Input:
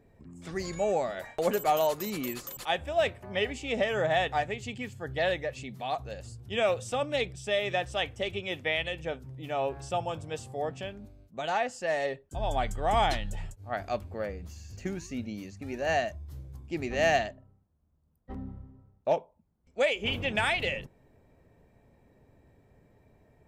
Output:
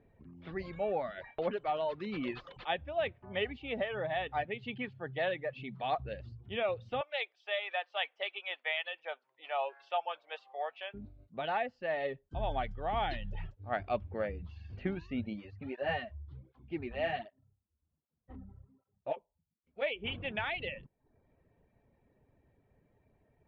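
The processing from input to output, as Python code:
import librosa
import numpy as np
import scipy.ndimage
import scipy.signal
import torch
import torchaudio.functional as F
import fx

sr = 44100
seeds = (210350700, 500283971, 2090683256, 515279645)

y = fx.ellip_bandpass(x, sr, low_hz=130.0, high_hz=9500.0, order=3, stop_db=40, at=(4.46, 5.84))
y = fx.highpass(y, sr, hz=650.0, slope=24, at=(7.01, 10.94))
y = fx.flanger_cancel(y, sr, hz=1.3, depth_ms=7.8, at=(15.33, 19.81), fade=0.02)
y = fx.dereverb_blind(y, sr, rt60_s=0.52)
y = scipy.signal.sosfilt(scipy.signal.butter(6, 3600.0, 'lowpass', fs=sr, output='sos'), y)
y = fx.rider(y, sr, range_db=4, speed_s=0.5)
y = y * 10.0 ** (-4.0 / 20.0)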